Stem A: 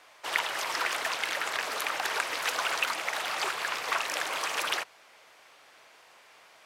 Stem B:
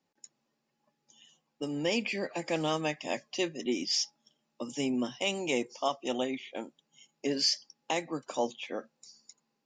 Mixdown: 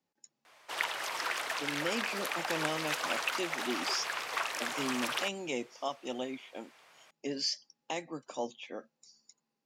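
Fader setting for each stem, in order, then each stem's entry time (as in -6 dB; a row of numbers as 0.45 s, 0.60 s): -4.5 dB, -5.5 dB; 0.45 s, 0.00 s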